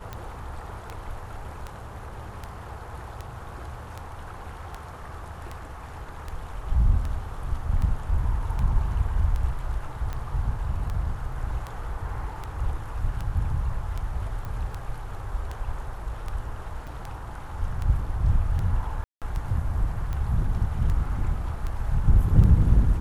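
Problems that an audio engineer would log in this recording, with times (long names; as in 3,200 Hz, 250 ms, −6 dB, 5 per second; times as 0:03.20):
scratch tick 78 rpm −20 dBFS
0:14.45: click −24 dBFS
0:16.87–0:16.88: drop-out 5.1 ms
0:19.04–0:19.22: drop-out 177 ms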